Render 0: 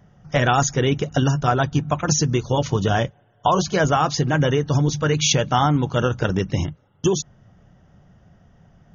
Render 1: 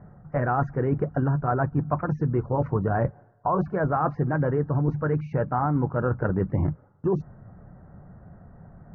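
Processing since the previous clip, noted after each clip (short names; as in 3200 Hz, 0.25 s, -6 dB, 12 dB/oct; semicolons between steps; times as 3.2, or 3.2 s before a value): reverse; compressor 6:1, threshold -26 dBFS, peak gain reduction 13 dB; reverse; inverse Chebyshev low-pass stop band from 3100 Hz, stop band 40 dB; gain +5 dB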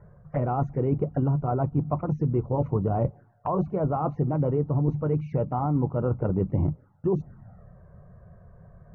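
envelope flanger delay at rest 2.2 ms, full sweep at -23 dBFS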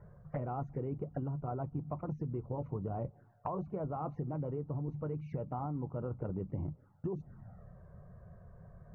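compressor 10:1, threshold -30 dBFS, peak gain reduction 11.5 dB; gain -4 dB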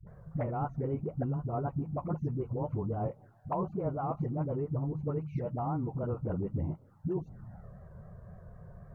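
vibrato 3.9 Hz 80 cents; dispersion highs, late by 69 ms, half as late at 330 Hz; gain +4.5 dB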